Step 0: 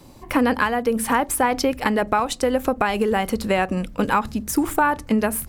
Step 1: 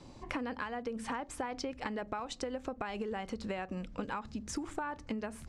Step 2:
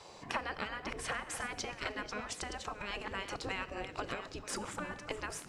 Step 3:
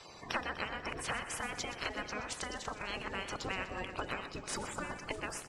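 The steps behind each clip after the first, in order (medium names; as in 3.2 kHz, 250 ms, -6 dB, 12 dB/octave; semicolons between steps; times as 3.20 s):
low-pass 7.2 kHz 24 dB/octave; compression 5:1, threshold -30 dBFS, peak gain reduction 14.5 dB; trim -6 dB
chunks repeated in reverse 617 ms, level -10.5 dB; spectral gate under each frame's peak -10 dB weak; Schroeder reverb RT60 1.4 s, combs from 26 ms, DRR 16.5 dB; trim +6.5 dB
coarse spectral quantiser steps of 30 dB; on a send: feedback delay 123 ms, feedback 59%, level -13 dB; on the sum: trim +1 dB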